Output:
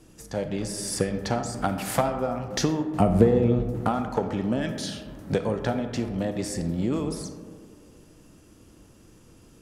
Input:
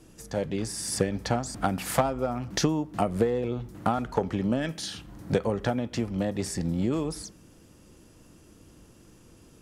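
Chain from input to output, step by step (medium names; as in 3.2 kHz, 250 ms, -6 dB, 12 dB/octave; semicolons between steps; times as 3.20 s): 3.00–3.81 s: bass shelf 370 Hz +11.5 dB; algorithmic reverb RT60 2 s, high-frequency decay 0.3×, pre-delay 0 ms, DRR 7.5 dB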